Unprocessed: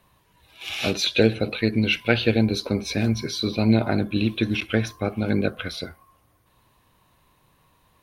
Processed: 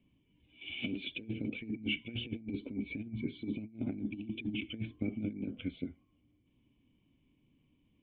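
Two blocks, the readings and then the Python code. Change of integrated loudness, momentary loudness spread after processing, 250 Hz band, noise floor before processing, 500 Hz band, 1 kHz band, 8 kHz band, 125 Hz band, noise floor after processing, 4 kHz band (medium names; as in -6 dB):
-16.0 dB, 4 LU, -14.0 dB, -63 dBFS, -23.5 dB, under -30 dB, under -40 dB, -18.0 dB, -73 dBFS, -16.0 dB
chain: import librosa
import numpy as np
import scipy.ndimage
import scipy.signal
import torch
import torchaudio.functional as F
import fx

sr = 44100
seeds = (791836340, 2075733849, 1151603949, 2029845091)

y = fx.formant_cascade(x, sr, vowel='i')
y = fx.over_compress(y, sr, threshold_db=-34.0, ratio=-0.5)
y = y * librosa.db_to_amplitude(-2.5)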